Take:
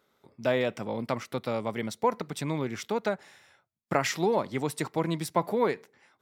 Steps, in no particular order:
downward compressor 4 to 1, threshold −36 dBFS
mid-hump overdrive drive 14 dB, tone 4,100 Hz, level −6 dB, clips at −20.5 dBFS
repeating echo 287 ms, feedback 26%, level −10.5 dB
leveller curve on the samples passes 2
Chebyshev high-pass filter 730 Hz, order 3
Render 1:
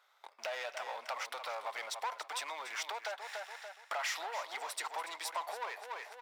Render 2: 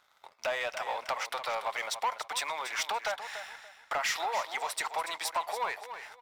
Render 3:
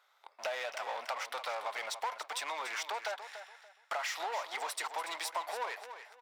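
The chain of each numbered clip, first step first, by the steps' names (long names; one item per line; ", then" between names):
mid-hump overdrive, then leveller curve on the samples, then repeating echo, then downward compressor, then Chebyshev high-pass filter
downward compressor, then mid-hump overdrive, then Chebyshev high-pass filter, then leveller curve on the samples, then repeating echo
leveller curve on the samples, then mid-hump overdrive, then Chebyshev high-pass filter, then downward compressor, then repeating echo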